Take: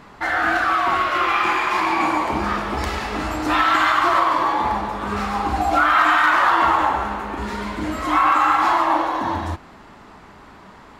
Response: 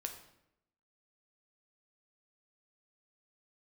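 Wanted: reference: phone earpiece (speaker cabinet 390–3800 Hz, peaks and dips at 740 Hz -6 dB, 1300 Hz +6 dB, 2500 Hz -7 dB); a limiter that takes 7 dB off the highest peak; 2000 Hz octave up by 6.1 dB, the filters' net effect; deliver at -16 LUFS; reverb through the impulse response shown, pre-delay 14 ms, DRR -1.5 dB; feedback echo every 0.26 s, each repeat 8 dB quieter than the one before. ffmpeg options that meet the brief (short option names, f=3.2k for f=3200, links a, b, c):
-filter_complex "[0:a]equalizer=f=2k:t=o:g=7.5,alimiter=limit=-7.5dB:level=0:latency=1,aecho=1:1:260|520|780|1040|1300:0.398|0.159|0.0637|0.0255|0.0102,asplit=2[a][b];[1:a]atrim=start_sample=2205,adelay=14[c];[b][c]afir=irnorm=-1:irlink=0,volume=3dB[d];[a][d]amix=inputs=2:normalize=0,highpass=390,equalizer=f=740:t=q:w=4:g=-6,equalizer=f=1.3k:t=q:w=4:g=6,equalizer=f=2.5k:t=q:w=4:g=-7,lowpass=f=3.8k:w=0.5412,lowpass=f=3.8k:w=1.3066,volume=-4.5dB"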